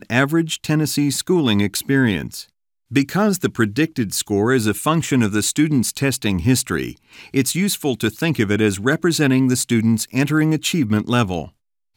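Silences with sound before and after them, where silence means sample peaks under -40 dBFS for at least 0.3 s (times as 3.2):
2.44–2.91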